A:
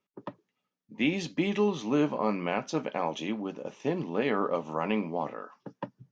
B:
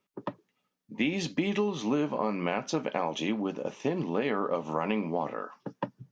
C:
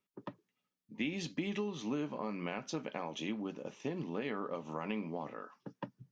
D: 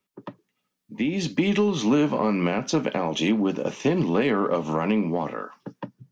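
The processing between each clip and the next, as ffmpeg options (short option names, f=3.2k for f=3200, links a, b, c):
-af "acompressor=threshold=-29dB:ratio=6,volume=4.5dB"
-af "equalizer=f=710:t=o:w=1.7:g=-4.5,volume=-7dB"
-filter_complex "[0:a]acrossover=split=230|620[a][b][c];[c]alimiter=level_in=9.5dB:limit=-24dB:level=0:latency=1:release=391,volume=-9.5dB[d];[a][b][d]amix=inputs=3:normalize=0,dynaudnorm=f=210:g=11:m=10.5dB,aeval=exprs='0.168*(cos(1*acos(clip(val(0)/0.168,-1,1)))-cos(1*PI/2))+0.00668*(cos(5*acos(clip(val(0)/0.168,-1,1)))-cos(5*PI/2))':c=same,volume=5.5dB"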